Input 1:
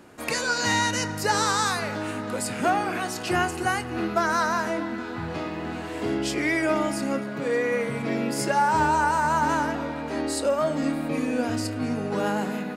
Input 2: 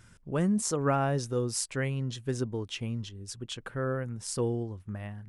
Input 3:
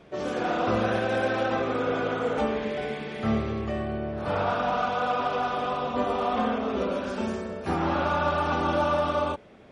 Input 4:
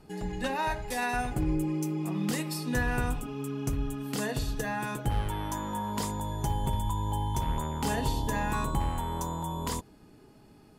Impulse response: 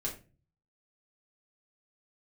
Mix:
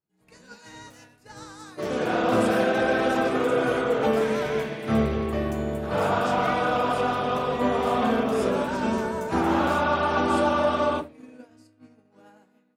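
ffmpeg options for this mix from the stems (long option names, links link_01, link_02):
-filter_complex "[0:a]volume=-15.5dB,asplit=2[link_01][link_02];[link_02]volume=-5.5dB[link_03];[1:a]volume=-19.5dB[link_04];[2:a]adelay=1650,volume=-1dB,asplit=2[link_05][link_06];[link_06]volume=-4.5dB[link_07];[3:a]equalizer=frequency=800:width=1.5:gain=-11.5,alimiter=level_in=4dB:limit=-24dB:level=0:latency=1,volume=-4dB,asoftclip=type=tanh:threshold=-38dB,volume=-3.5dB,asplit=2[link_08][link_09];[link_09]volume=-7.5dB[link_10];[4:a]atrim=start_sample=2205[link_11];[link_03][link_07][link_10]amix=inputs=3:normalize=0[link_12];[link_12][link_11]afir=irnorm=-1:irlink=0[link_13];[link_01][link_04][link_05][link_08][link_13]amix=inputs=5:normalize=0,highpass=68,agate=range=-33dB:threshold=-26dB:ratio=3:detection=peak"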